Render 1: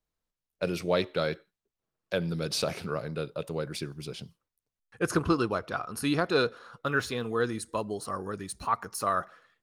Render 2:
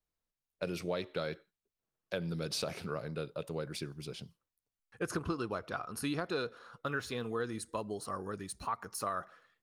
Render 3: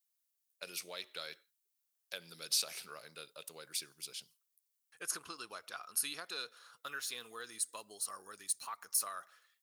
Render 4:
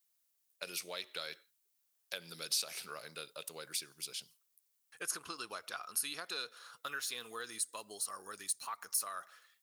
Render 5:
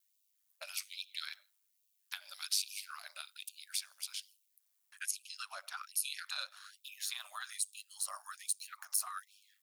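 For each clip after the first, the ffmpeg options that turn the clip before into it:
ffmpeg -i in.wav -af "acompressor=threshold=-27dB:ratio=5,volume=-4.5dB" out.wav
ffmpeg -i in.wav -af "aderivative,volume=8dB" out.wav
ffmpeg -i in.wav -af "acompressor=threshold=-47dB:ratio=1.5,volume=5dB" out.wav
ffmpeg -i in.wav -af "aeval=exprs='val(0)*sin(2*PI*50*n/s)':channel_layout=same,afftfilt=real='re*gte(b*sr/1024,530*pow(2400/530,0.5+0.5*sin(2*PI*1.2*pts/sr)))':imag='im*gte(b*sr/1024,530*pow(2400/530,0.5+0.5*sin(2*PI*1.2*pts/sr)))':win_size=1024:overlap=0.75,volume=3.5dB" out.wav

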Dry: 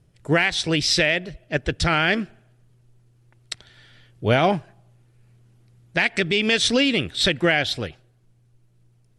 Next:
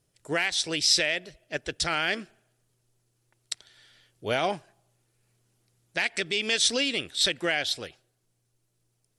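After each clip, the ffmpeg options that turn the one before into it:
ffmpeg -i in.wav -af "bass=frequency=250:gain=-10,treble=frequency=4000:gain=10,volume=-7.5dB" out.wav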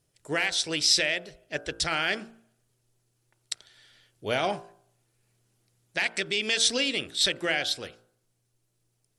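ffmpeg -i in.wav -af "bandreject=frequency=56.92:width_type=h:width=4,bandreject=frequency=113.84:width_type=h:width=4,bandreject=frequency=170.76:width_type=h:width=4,bandreject=frequency=227.68:width_type=h:width=4,bandreject=frequency=284.6:width_type=h:width=4,bandreject=frequency=341.52:width_type=h:width=4,bandreject=frequency=398.44:width_type=h:width=4,bandreject=frequency=455.36:width_type=h:width=4,bandreject=frequency=512.28:width_type=h:width=4,bandreject=frequency=569.2:width_type=h:width=4,bandreject=frequency=626.12:width_type=h:width=4,bandreject=frequency=683.04:width_type=h:width=4,bandreject=frequency=739.96:width_type=h:width=4,bandreject=frequency=796.88:width_type=h:width=4,bandreject=frequency=853.8:width_type=h:width=4,bandreject=frequency=910.72:width_type=h:width=4,bandreject=frequency=967.64:width_type=h:width=4,bandreject=frequency=1024.56:width_type=h:width=4,bandreject=frequency=1081.48:width_type=h:width=4,bandreject=frequency=1138.4:width_type=h:width=4,bandreject=frequency=1195.32:width_type=h:width=4,bandreject=frequency=1252.24:width_type=h:width=4,bandreject=frequency=1309.16:width_type=h:width=4,bandreject=frequency=1366.08:width_type=h:width=4,bandreject=frequency=1423:width_type=h:width=4,bandreject=frequency=1479.92:width_type=h:width=4,bandreject=frequency=1536.84:width_type=h:width=4,bandreject=frequency=1593.76:width_type=h:width=4" out.wav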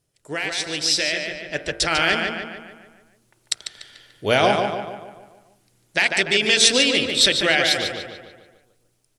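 ffmpeg -i in.wav -filter_complex "[0:a]asplit=2[link_01][link_02];[link_02]adelay=146,lowpass=frequency=3800:poles=1,volume=-4.5dB,asplit=2[link_03][link_04];[link_04]adelay=146,lowpass=frequency=3800:poles=1,volume=0.52,asplit=2[link_05][link_06];[link_06]adelay=146,lowpass=frequency=3800:poles=1,volume=0.52,asplit=2[link_07][link_08];[link_08]adelay=146,lowpass=frequency=3800:poles=1,volume=0.52,asplit=2[link_09][link_10];[link_10]adelay=146,lowpass=frequency=3800:poles=1,volume=0.52,asplit=2[link_11][link_12];[link_12]adelay=146,lowpass=frequency=3800:poles=1,volume=0.52,asplit=2[link_13][link_14];[link_14]adelay=146,lowpass=frequency=3800:poles=1,volume=0.52[link_15];[link_03][link_05][link_07][link_09][link_11][link_13][link_15]amix=inputs=7:normalize=0[link_16];[link_01][link_16]amix=inputs=2:normalize=0,dynaudnorm=framelen=320:gausssize=9:maxgain=12dB" out.wav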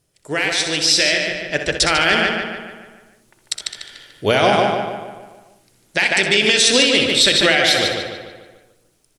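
ffmpeg -i in.wav -filter_complex "[0:a]alimiter=limit=-10dB:level=0:latency=1:release=45,asplit=2[link_01][link_02];[link_02]aecho=0:1:63|79:0.335|0.168[link_03];[link_01][link_03]amix=inputs=2:normalize=0,volume=6dB" out.wav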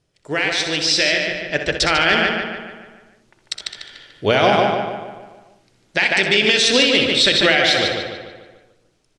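ffmpeg -i in.wav -af "lowpass=5300" out.wav

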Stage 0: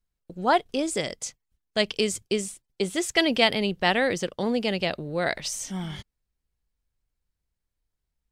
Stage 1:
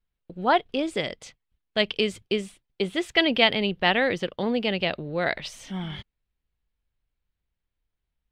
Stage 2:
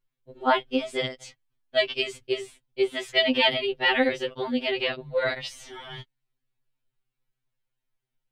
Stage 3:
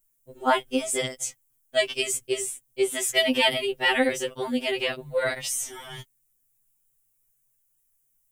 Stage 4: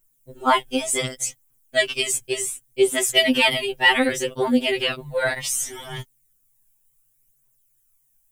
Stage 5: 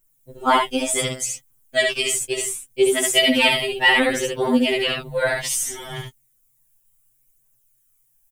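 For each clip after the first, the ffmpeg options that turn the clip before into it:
ffmpeg -i in.wav -af "highshelf=frequency=4700:width_type=q:width=1.5:gain=-12" out.wav
ffmpeg -i in.wav -af "afftfilt=real='re*2.45*eq(mod(b,6),0)':imag='im*2.45*eq(mod(b,6),0)':win_size=2048:overlap=0.75,volume=2dB" out.wav
ffmpeg -i in.wav -af "aexciter=amount=7.5:drive=8.4:freq=6300" out.wav
ffmpeg -i in.wav -af "aphaser=in_gain=1:out_gain=1:delay=1.3:decay=0.45:speed=0.67:type=triangular,volume=3.5dB" out.wav
ffmpeg -i in.wav -af "aecho=1:1:70:0.668" out.wav

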